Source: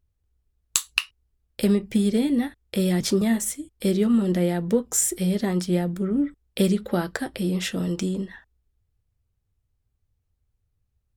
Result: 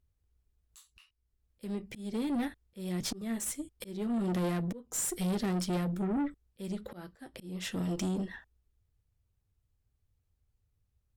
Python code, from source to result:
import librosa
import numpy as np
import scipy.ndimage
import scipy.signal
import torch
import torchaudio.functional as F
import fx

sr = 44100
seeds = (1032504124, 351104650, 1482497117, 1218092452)

y = fx.auto_swell(x, sr, attack_ms=547.0)
y = fx.tube_stage(y, sr, drive_db=27.0, bias=0.4)
y = y * librosa.db_to_amplitude(-1.0)